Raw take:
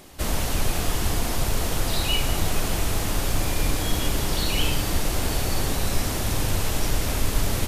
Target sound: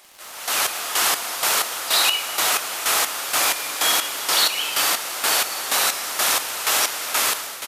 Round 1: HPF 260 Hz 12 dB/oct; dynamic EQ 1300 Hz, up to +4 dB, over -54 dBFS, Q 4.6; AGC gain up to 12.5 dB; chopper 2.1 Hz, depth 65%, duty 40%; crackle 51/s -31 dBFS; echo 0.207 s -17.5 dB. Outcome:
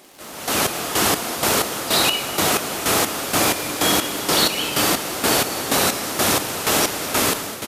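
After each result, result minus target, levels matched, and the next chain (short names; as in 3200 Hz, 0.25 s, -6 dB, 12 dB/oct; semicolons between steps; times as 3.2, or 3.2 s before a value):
250 Hz band +16.5 dB; echo-to-direct +10 dB
HPF 890 Hz 12 dB/oct; dynamic EQ 1300 Hz, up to +4 dB, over -54 dBFS, Q 4.6; AGC gain up to 12.5 dB; chopper 2.1 Hz, depth 65%, duty 40%; crackle 51/s -31 dBFS; echo 0.207 s -17.5 dB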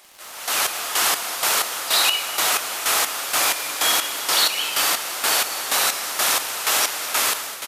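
echo-to-direct +10 dB
HPF 890 Hz 12 dB/oct; dynamic EQ 1300 Hz, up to +4 dB, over -54 dBFS, Q 4.6; AGC gain up to 12.5 dB; chopper 2.1 Hz, depth 65%, duty 40%; crackle 51/s -31 dBFS; echo 0.207 s -27.5 dB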